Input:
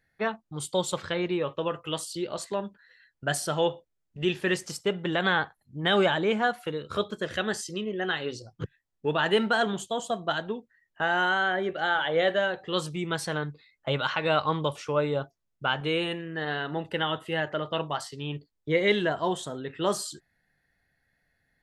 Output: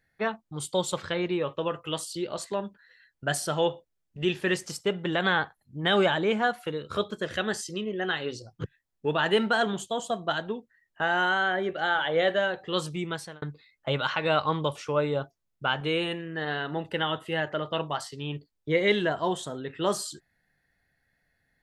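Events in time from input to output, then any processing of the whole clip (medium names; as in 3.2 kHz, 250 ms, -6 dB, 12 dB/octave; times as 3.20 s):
13.00–13.42 s: fade out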